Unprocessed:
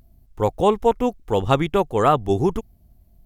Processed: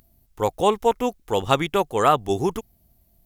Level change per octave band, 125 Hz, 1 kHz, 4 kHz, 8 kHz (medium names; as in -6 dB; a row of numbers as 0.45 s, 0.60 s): -6.0 dB, 0.0 dB, +3.5 dB, +5.5 dB